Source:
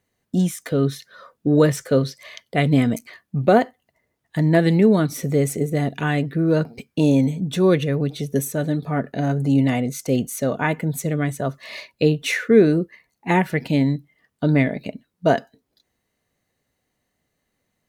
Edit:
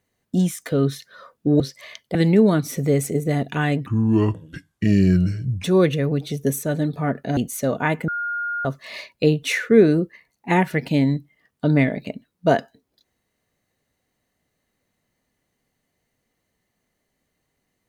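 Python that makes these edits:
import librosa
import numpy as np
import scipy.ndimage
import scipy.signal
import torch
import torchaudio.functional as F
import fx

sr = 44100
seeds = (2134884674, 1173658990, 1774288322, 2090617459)

y = fx.edit(x, sr, fx.cut(start_s=1.6, length_s=0.42),
    fx.cut(start_s=2.57, length_s=2.04),
    fx.speed_span(start_s=6.32, length_s=1.21, speed=0.68),
    fx.cut(start_s=9.26, length_s=0.9),
    fx.bleep(start_s=10.87, length_s=0.57, hz=1420.0, db=-23.0), tone=tone)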